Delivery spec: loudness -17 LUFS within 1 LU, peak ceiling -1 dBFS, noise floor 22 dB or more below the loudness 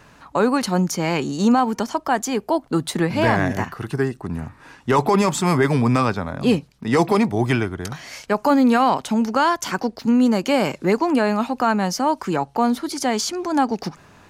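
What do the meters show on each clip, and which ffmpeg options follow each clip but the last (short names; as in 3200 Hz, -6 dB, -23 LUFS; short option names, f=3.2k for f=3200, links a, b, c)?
loudness -20.5 LUFS; peak -6.0 dBFS; loudness target -17.0 LUFS
-> -af "volume=3.5dB"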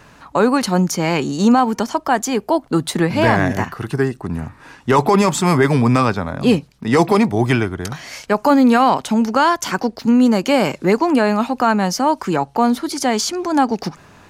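loudness -17.0 LUFS; peak -2.5 dBFS; noise floor -48 dBFS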